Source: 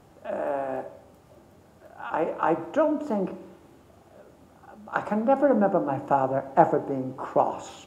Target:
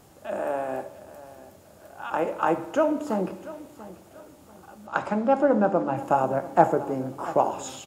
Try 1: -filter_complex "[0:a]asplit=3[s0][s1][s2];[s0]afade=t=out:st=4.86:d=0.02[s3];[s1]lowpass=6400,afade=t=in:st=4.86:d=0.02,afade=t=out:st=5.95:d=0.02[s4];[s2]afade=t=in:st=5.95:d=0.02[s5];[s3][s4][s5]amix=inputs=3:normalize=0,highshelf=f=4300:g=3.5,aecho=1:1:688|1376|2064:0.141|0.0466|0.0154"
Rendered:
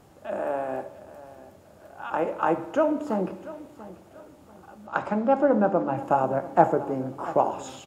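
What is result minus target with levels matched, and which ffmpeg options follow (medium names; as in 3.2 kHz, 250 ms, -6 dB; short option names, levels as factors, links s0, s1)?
8 kHz band -6.0 dB
-filter_complex "[0:a]asplit=3[s0][s1][s2];[s0]afade=t=out:st=4.86:d=0.02[s3];[s1]lowpass=6400,afade=t=in:st=4.86:d=0.02,afade=t=out:st=5.95:d=0.02[s4];[s2]afade=t=in:st=5.95:d=0.02[s5];[s3][s4][s5]amix=inputs=3:normalize=0,highshelf=f=4300:g=12,aecho=1:1:688|1376|2064:0.141|0.0466|0.0154"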